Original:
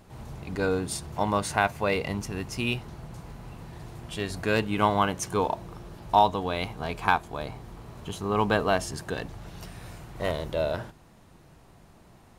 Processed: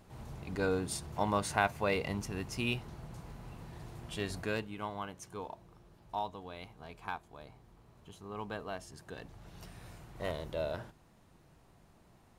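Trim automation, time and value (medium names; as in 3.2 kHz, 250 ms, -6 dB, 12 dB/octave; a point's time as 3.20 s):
4.35 s -5.5 dB
4.78 s -17 dB
8.86 s -17 dB
9.64 s -8.5 dB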